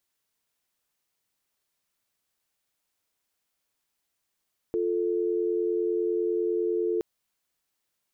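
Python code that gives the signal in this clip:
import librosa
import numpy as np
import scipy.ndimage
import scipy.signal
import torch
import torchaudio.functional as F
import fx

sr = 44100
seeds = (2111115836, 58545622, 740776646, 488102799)

y = fx.call_progress(sr, length_s=2.27, kind='dial tone', level_db=-26.5)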